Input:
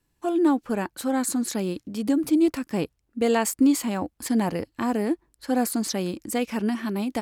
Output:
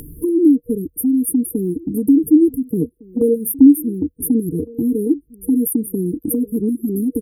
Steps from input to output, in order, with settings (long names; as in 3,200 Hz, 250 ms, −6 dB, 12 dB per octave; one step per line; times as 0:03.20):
brick-wall band-stop 480–8,800 Hz
reverb reduction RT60 0.51 s
EQ curve with evenly spaced ripples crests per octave 1.1, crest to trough 8 dB
upward compression, threshold −21 dBFS
slap from a distant wall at 250 metres, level −21 dB
level +7.5 dB